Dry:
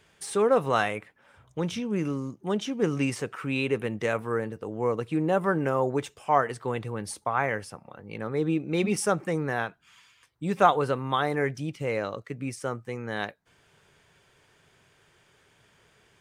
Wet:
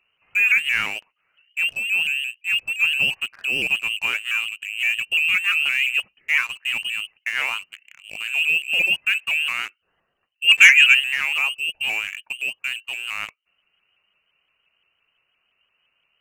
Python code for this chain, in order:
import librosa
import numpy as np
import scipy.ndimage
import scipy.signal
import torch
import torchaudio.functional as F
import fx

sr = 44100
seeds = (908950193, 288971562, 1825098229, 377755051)

y = fx.tilt_eq(x, sr, slope=-2.5)
y = fx.freq_invert(y, sr, carrier_hz=2900)
y = fx.peak_eq(y, sr, hz=2100.0, db=10.0, octaves=2.6, at=(10.47, 10.99), fade=0.02)
y = fx.leveller(y, sr, passes=2)
y = fx.vibrato_shape(y, sr, shape='saw_up', rate_hz=5.8, depth_cents=100.0)
y = F.gain(torch.from_numpy(y), -6.5).numpy()